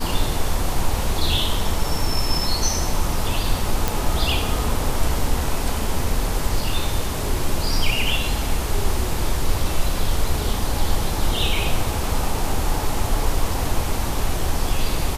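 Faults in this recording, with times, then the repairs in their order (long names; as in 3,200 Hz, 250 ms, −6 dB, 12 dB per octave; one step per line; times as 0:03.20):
0:03.88: click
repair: click removal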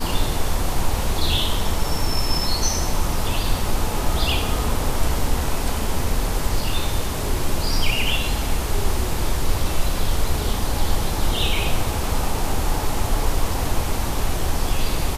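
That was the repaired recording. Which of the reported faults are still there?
none of them is left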